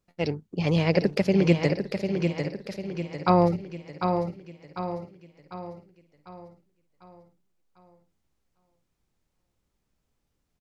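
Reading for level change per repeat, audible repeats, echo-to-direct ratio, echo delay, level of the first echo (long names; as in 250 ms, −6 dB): repeats not evenly spaced, 9, −4.5 dB, 748 ms, −6.0 dB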